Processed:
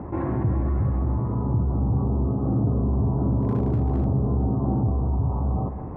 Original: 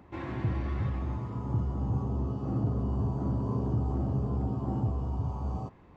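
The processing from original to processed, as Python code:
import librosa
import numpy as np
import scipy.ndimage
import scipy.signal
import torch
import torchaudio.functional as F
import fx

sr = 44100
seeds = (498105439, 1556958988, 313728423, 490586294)

y = fx.wiener(x, sr, points=9)
y = scipy.signal.sosfilt(scipy.signal.butter(2, 1000.0, 'lowpass', fs=sr, output='sos'), y)
y = fx.overload_stage(y, sr, gain_db=25.0, at=(3.41, 4.04), fade=0.02)
y = y + 10.0 ** (-17.0 / 20.0) * np.pad(y, (int(210 * sr / 1000.0), 0))[:len(y)]
y = fx.env_flatten(y, sr, amount_pct=50)
y = y * 10.0 ** (5.5 / 20.0)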